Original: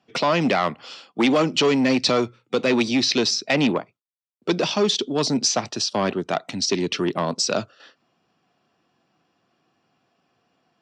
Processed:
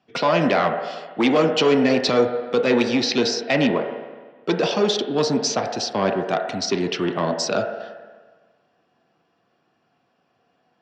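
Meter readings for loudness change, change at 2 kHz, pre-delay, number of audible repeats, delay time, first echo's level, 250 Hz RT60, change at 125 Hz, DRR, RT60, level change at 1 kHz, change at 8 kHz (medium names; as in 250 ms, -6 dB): +0.5 dB, +0.5 dB, 9 ms, no echo, no echo, no echo, 1.4 s, +0.5 dB, 2.5 dB, 1.4 s, +2.0 dB, -4.0 dB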